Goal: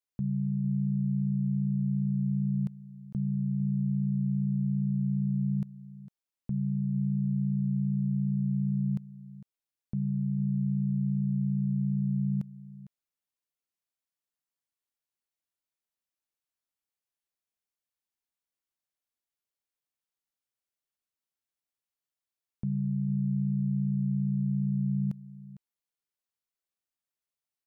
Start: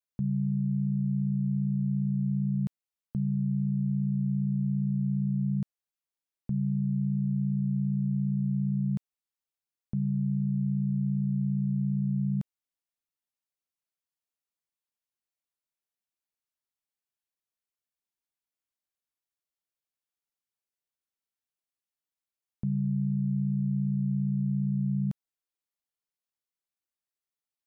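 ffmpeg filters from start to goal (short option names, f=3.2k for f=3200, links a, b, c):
-af "aecho=1:1:454:0.15,volume=-1.5dB"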